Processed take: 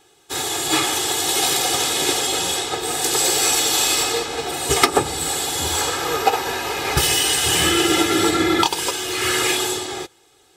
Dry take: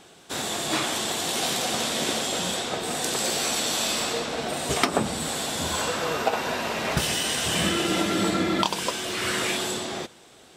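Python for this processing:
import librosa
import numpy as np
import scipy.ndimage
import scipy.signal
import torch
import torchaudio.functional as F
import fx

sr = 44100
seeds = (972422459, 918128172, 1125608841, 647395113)

y = fx.high_shelf(x, sr, hz=9600.0, db=8.5)
y = fx.notch(y, sr, hz=500.0, q=12.0)
y = y + 0.91 * np.pad(y, (int(2.4 * sr / 1000.0), 0))[:len(y)]
y = 10.0 ** (-7.5 / 20.0) * np.tanh(y / 10.0 ** (-7.5 / 20.0))
y = fx.upward_expand(y, sr, threshold_db=-45.0, expansion=1.5)
y = F.gain(torch.from_numpy(y), 6.5).numpy()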